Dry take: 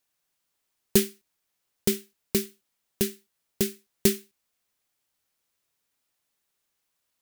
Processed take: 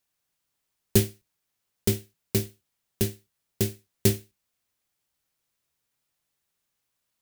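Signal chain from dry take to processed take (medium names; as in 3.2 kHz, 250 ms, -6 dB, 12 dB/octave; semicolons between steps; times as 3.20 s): octave divider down 1 oct, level +2 dB; trim -1.5 dB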